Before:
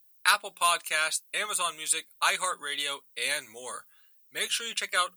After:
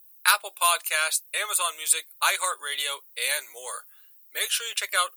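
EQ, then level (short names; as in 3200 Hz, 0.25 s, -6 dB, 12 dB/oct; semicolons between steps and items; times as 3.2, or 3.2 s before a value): HPF 430 Hz 24 dB/oct; bell 15000 Hz +11.5 dB 0.66 oct; +2.0 dB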